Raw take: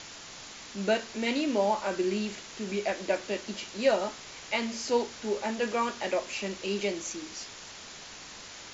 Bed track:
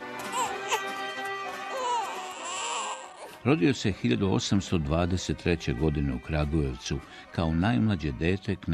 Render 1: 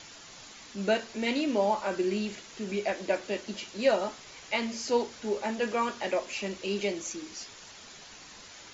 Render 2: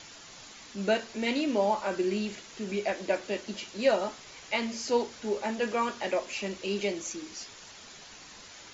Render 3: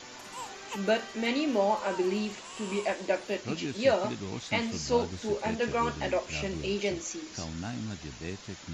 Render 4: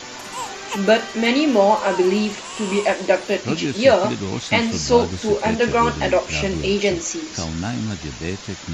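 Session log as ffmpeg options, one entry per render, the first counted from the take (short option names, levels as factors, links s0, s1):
-af "afftdn=nr=6:nf=-46"
-af anull
-filter_complex "[1:a]volume=0.251[s0];[0:a][s0]amix=inputs=2:normalize=0"
-af "volume=3.76,alimiter=limit=0.794:level=0:latency=1"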